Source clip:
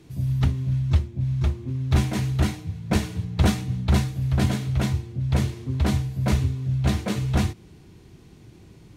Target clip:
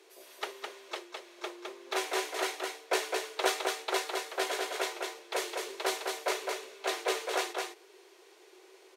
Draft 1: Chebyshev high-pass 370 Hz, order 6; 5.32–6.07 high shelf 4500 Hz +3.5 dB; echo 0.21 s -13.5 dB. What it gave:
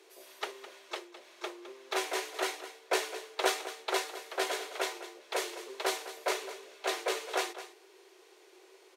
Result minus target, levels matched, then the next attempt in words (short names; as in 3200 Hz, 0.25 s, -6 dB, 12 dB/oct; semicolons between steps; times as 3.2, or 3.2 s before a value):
echo-to-direct -9.5 dB
Chebyshev high-pass 370 Hz, order 6; 5.32–6.07 high shelf 4500 Hz +3.5 dB; echo 0.21 s -4 dB